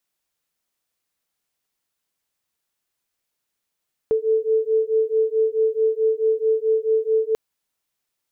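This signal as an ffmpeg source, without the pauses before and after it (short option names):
-f lavfi -i "aevalsrc='0.1*(sin(2*PI*439*t)+sin(2*PI*443.6*t))':d=3.24:s=44100"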